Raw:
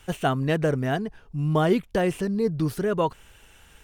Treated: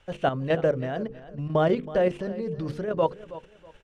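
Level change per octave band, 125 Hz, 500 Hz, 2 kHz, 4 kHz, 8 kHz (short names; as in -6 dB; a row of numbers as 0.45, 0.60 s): -5.0 dB, +0.5 dB, -3.5 dB, -4.5 dB, under -10 dB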